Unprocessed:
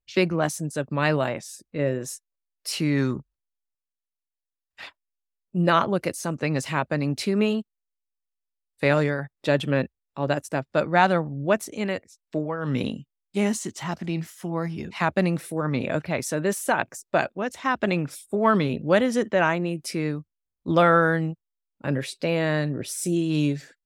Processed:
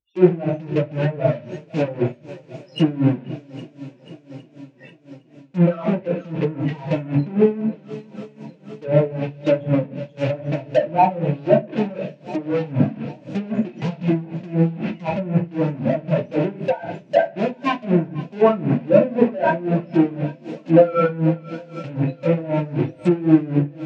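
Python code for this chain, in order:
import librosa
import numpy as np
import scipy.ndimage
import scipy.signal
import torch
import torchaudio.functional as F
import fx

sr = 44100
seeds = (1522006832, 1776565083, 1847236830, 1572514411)

p1 = fx.spec_topn(x, sr, count=4)
p2 = fx.tilt_eq(p1, sr, slope=-3.0)
p3 = fx.fuzz(p2, sr, gain_db=46.0, gate_db=-39.0)
p4 = p2 + (p3 * librosa.db_to_amplitude(-12.0))
p5 = fx.cabinet(p4, sr, low_hz=160.0, low_slope=12, high_hz=7200.0, hz=(190.0, 1200.0, 2600.0), db=(-4, -9, 10))
p6 = p5 + fx.echo_swing(p5, sr, ms=812, ratio=1.5, feedback_pct=61, wet_db=-18.5, dry=0)
p7 = fx.room_shoebox(p6, sr, seeds[0], volume_m3=34.0, walls='mixed', distance_m=0.57)
p8 = fx.env_lowpass_down(p7, sr, base_hz=1700.0, full_db=-14.0)
p9 = p8 * 10.0 ** (-18 * (0.5 - 0.5 * np.cos(2.0 * np.pi * 3.9 * np.arange(len(p8)) / sr)) / 20.0)
y = p9 * librosa.db_to_amplitude(2.5)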